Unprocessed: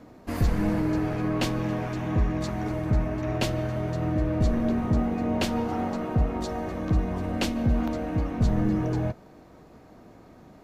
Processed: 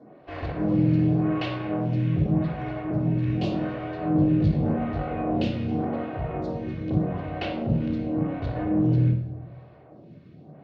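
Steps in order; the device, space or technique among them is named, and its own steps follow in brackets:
vibe pedal into a guitar amplifier (phaser with staggered stages 0.86 Hz; tube saturation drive 24 dB, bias 0.6; loudspeaker in its box 83–4,100 Hz, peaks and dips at 150 Hz +10 dB, 560 Hz +9 dB, 1,200 Hz −4 dB, 2,800 Hz +3 dB)
0:03.24–0:05.41: double-tracking delay 20 ms −4 dB
rectangular room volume 1,900 cubic metres, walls furnished, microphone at 3.4 metres

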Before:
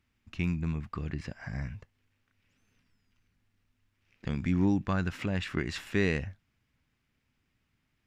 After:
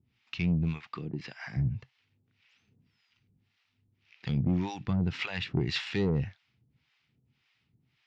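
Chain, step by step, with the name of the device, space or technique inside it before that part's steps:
0:00.87–0:01.56: high-pass filter 240 Hz 12 dB per octave
high-shelf EQ 3,400 Hz +10.5 dB
guitar amplifier with harmonic tremolo (two-band tremolo in antiphase 1.8 Hz, depth 100%, crossover 620 Hz; soft clipping −28.5 dBFS, distortion −11 dB; loudspeaker in its box 89–4,500 Hz, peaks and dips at 130 Hz +8 dB, 270 Hz −3 dB, 580 Hz −8 dB, 1,100 Hz −4 dB, 1,600 Hz −5 dB)
level +7.5 dB

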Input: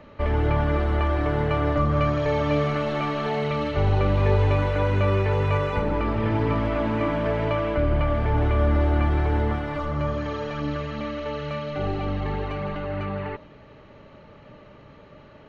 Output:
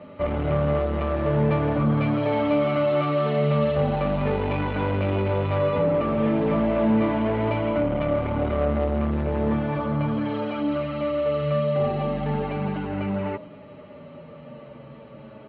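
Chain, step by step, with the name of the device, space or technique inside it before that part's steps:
barber-pole flanger into a guitar amplifier (barber-pole flanger 7.8 ms −0.37 Hz; soft clipping −24 dBFS, distortion −11 dB; loudspeaker in its box 78–3,500 Hz, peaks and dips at 85 Hz −6 dB, 150 Hz +5 dB, 230 Hz +8 dB, 570 Hz +6 dB, 1,700 Hz −5 dB)
level +5 dB

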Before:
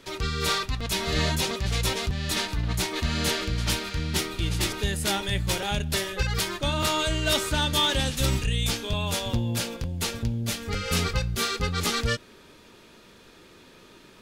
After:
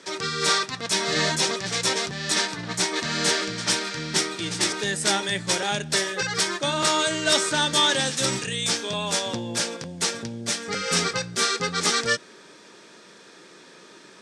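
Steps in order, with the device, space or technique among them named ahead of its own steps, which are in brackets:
television speaker (loudspeaker in its box 170–8,900 Hz, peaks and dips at 240 Hz −6 dB, 1,700 Hz +4 dB, 2,800 Hz −4 dB, 5,600 Hz +6 dB, 8,400 Hz +7 dB)
level +3.5 dB

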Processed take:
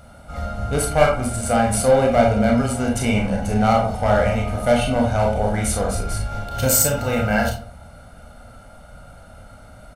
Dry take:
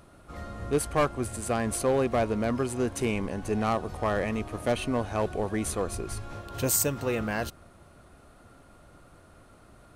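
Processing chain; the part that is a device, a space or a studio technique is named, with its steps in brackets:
microphone above a desk (comb filter 1.4 ms, depth 79%; convolution reverb RT60 0.45 s, pre-delay 26 ms, DRR 0 dB)
level +4.5 dB

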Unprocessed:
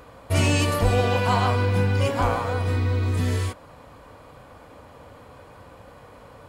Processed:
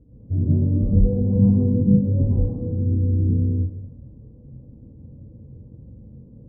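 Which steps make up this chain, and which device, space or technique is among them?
next room (low-pass filter 290 Hz 24 dB per octave; convolution reverb RT60 0.60 s, pre-delay 103 ms, DRR −7.5 dB)
0:01.35–0:01.99: low-shelf EQ 250 Hz +7.5 dB

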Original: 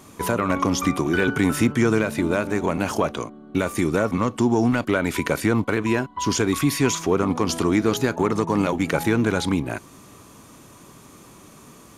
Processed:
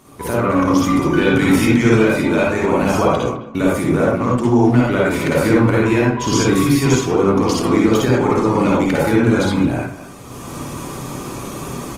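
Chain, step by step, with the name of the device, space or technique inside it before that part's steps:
0:01.21–0:02.59: parametric band 3,200 Hz +5.5 dB 1.7 octaves
speakerphone in a meeting room (convolution reverb RT60 0.55 s, pre-delay 49 ms, DRR −4 dB; far-end echo of a speakerphone 210 ms, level −15 dB; automatic gain control gain up to 13.5 dB; level −1.5 dB; Opus 24 kbit/s 48,000 Hz)

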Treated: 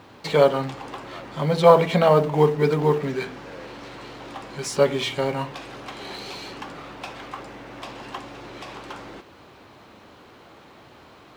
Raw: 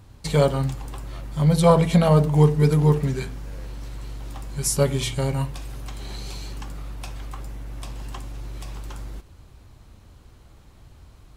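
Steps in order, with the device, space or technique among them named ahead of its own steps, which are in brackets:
phone line with mismatched companding (band-pass filter 310–3,500 Hz; mu-law and A-law mismatch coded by mu)
level +4 dB

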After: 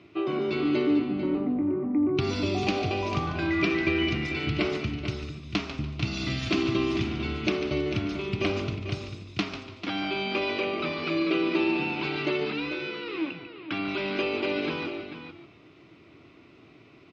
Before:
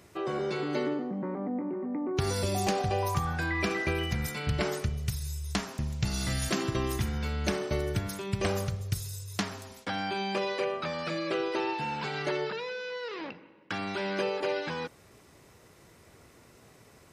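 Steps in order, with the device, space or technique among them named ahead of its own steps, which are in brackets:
0:12.98–0:13.89: parametric band 8,900 Hz −12.5 dB 0.75 octaves
single-tap delay 444 ms −9.5 dB
frequency-shifting delay pedal into a guitar cabinet (echo with shifted repeats 145 ms, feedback 35%, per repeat −150 Hz, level −10 dB; loudspeaker in its box 110–3,800 Hz, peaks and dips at 200 Hz −4 dB, 310 Hz +10 dB, 510 Hz −9 dB, 870 Hz −8 dB, 1,700 Hz −10 dB, 2,500 Hz +6 dB)
dynamic equaliser 6,200 Hz, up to +7 dB, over −56 dBFS, Q 1.2
level +3 dB

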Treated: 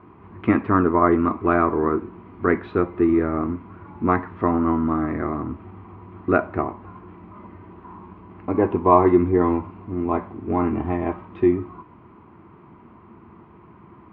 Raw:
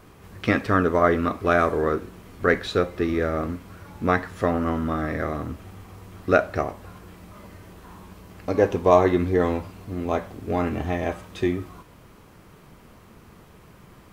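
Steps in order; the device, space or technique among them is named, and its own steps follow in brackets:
bass cabinet (loudspeaker in its box 76–2,200 Hz, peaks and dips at 89 Hz +3 dB, 230 Hz +5 dB, 340 Hz +9 dB, 530 Hz −9 dB, 1,000 Hz +9 dB, 1,700 Hz −6 dB)

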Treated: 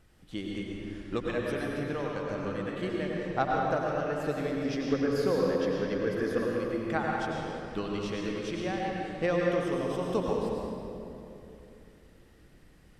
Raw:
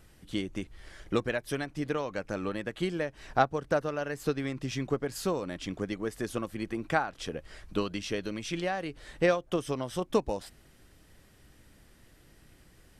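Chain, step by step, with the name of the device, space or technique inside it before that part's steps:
0:04.64–0:06.55: thirty-one-band graphic EQ 250 Hz +6 dB, 500 Hz +11 dB, 1,600 Hz +9 dB, 5,000 Hz +7 dB, 8,000 Hz −9 dB
swimming-pool hall (convolution reverb RT60 2.9 s, pre-delay 87 ms, DRR −2.5 dB; high-shelf EQ 5,700 Hz −6.5 dB)
level −4.5 dB

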